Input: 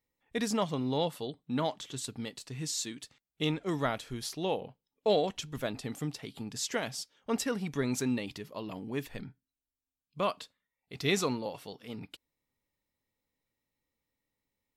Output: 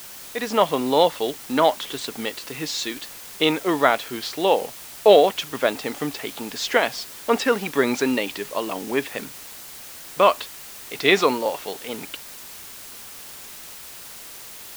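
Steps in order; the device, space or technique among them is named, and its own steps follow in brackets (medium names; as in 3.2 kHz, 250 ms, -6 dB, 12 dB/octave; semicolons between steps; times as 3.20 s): dictaphone (band-pass 390–3400 Hz; level rider gain up to 14 dB; wow and flutter; white noise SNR 16 dB); trim +2 dB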